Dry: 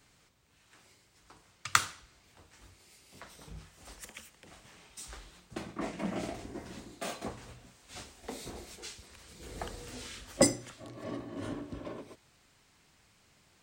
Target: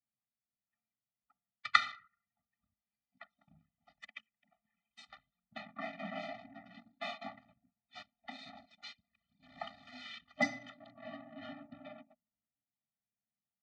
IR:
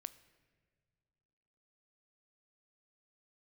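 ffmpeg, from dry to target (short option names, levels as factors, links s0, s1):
-filter_complex "[1:a]atrim=start_sample=2205[s0];[0:a][s0]afir=irnorm=-1:irlink=0,anlmdn=0.00398,highpass=340,equalizer=f=350:t=q:w=4:g=9,equalizer=f=520:t=q:w=4:g=-9,equalizer=f=2100:t=q:w=4:g=8,equalizer=f=3800:t=q:w=4:g=5,lowpass=f=4200:w=0.5412,lowpass=f=4200:w=1.3066,afftfilt=real='re*eq(mod(floor(b*sr/1024/290),2),0)':imag='im*eq(mod(floor(b*sr/1024/290),2),0)':win_size=1024:overlap=0.75,volume=1.68"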